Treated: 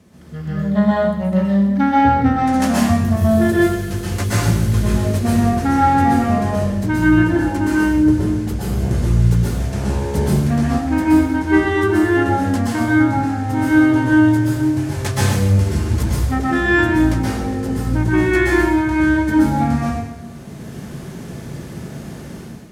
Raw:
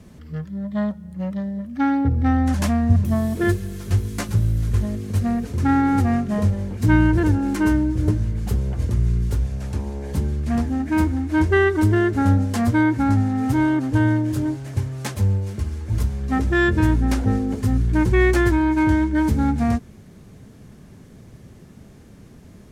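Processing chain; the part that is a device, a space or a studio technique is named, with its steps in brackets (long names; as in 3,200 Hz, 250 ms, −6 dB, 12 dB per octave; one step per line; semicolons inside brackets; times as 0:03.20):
far laptop microphone (convolution reverb RT60 0.90 s, pre-delay 116 ms, DRR −6.5 dB; high-pass filter 140 Hz 6 dB per octave; automatic gain control)
level −2.5 dB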